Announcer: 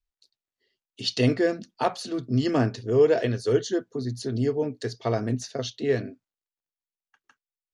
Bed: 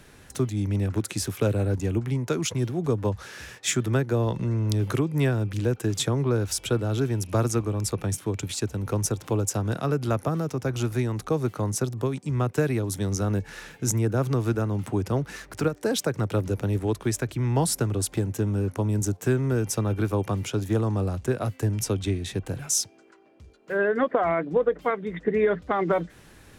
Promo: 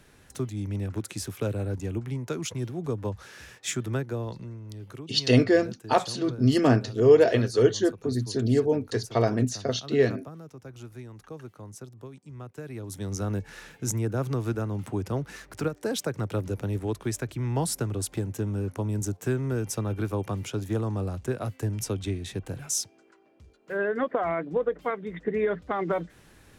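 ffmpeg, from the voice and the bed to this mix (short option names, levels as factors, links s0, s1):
-filter_complex "[0:a]adelay=4100,volume=1.33[s0];[1:a]volume=2.24,afade=t=out:st=3.97:d=0.63:silence=0.281838,afade=t=in:st=12.63:d=0.6:silence=0.237137[s1];[s0][s1]amix=inputs=2:normalize=0"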